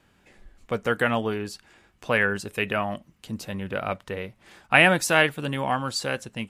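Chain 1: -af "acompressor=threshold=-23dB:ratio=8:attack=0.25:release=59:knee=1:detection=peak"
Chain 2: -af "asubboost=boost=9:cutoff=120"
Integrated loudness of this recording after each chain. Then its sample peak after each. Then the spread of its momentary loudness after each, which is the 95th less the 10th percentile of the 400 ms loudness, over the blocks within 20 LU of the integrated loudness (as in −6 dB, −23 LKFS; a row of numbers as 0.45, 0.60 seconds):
−32.5, −24.0 LKFS; −18.5, −3.0 dBFS; 8, 15 LU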